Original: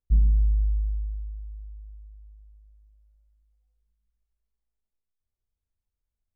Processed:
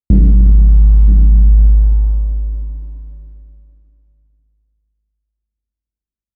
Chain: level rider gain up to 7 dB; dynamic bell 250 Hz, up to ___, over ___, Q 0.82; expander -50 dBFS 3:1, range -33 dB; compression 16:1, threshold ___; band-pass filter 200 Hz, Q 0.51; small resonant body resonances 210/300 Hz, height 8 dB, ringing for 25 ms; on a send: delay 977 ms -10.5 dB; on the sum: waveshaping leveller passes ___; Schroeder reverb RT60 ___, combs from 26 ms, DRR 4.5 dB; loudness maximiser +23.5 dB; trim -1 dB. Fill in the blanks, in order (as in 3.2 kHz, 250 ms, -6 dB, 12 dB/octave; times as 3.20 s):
+5 dB, -39 dBFS, -19 dBFS, 1, 2.5 s